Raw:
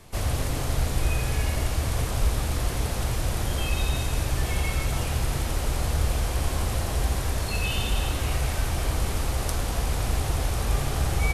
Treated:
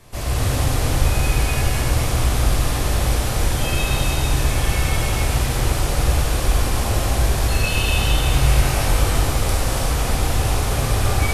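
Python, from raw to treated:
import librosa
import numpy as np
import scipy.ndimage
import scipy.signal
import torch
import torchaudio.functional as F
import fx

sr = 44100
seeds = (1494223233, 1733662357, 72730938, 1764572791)

y = fx.doubler(x, sr, ms=21.0, db=-3.0, at=(8.29, 9.03))
y = fx.rev_gated(y, sr, seeds[0], gate_ms=420, shape='flat', drr_db=-7.0)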